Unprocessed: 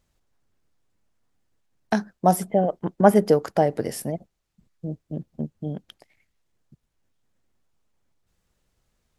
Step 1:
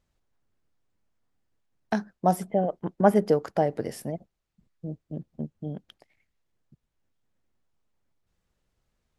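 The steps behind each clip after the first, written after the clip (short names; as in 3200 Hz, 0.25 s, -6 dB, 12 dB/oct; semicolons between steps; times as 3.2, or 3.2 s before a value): high shelf 6200 Hz -7 dB; gain -4 dB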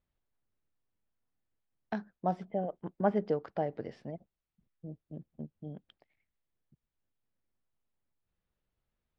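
LPF 4100 Hz 24 dB/oct; gain -9 dB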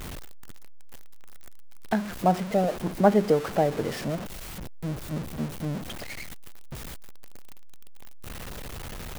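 zero-crossing step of -38.5 dBFS; gain +8.5 dB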